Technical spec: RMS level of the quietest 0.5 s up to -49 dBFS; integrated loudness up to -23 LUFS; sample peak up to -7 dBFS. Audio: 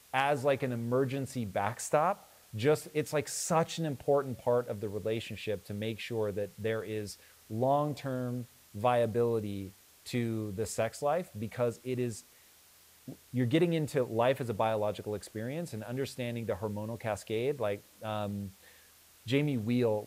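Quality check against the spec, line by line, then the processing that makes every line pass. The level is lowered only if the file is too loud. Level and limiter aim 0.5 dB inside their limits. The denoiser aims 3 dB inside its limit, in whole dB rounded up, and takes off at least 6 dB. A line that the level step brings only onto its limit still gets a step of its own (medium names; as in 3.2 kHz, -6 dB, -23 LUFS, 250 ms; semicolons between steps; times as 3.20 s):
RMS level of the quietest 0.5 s -60 dBFS: pass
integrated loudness -33.0 LUFS: pass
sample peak -13.0 dBFS: pass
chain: none needed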